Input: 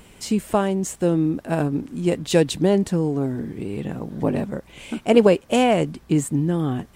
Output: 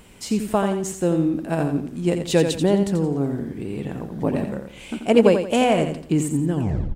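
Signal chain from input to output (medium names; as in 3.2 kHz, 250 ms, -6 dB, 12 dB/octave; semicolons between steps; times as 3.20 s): tape stop on the ending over 0.44 s; feedback delay 86 ms, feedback 33%, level -7.5 dB; trim -1 dB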